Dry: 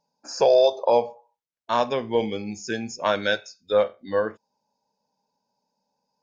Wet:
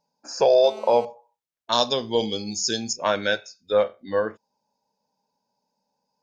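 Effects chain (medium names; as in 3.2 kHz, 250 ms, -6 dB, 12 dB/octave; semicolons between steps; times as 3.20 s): 0.64–1.05 s: mobile phone buzz -42 dBFS; 1.72–2.93 s: resonant high shelf 3 kHz +10.5 dB, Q 3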